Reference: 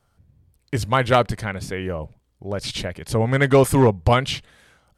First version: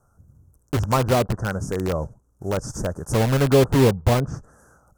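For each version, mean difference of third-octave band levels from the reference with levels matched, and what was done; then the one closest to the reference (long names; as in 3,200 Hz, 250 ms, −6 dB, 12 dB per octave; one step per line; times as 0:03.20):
7.5 dB: one scale factor per block 5 bits
elliptic band-stop filter 1,400–6,100 Hz, stop band 40 dB
treble cut that deepens with the level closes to 680 Hz, closed at −13.5 dBFS
in parallel at −4.5 dB: wrap-around overflow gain 19 dB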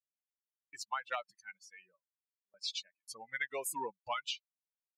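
15.5 dB: spectral dynamics exaggerated over time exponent 3
high-pass filter 1,100 Hz 12 dB per octave
noise gate with hold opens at −55 dBFS
downward compressor 6 to 1, threshold −32 dBFS, peak gain reduction 11.5 dB
level −2 dB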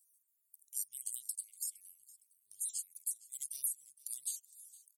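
26.0 dB: time-frequency cells dropped at random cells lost 46%
inverse Chebyshev high-pass filter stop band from 1,700 Hz, stop band 80 dB
downward compressor 6 to 1, threshold −50 dBFS, peak gain reduction 17.5 dB
on a send: repeating echo 462 ms, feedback 30%, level −20 dB
on the sum: level +14.5 dB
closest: first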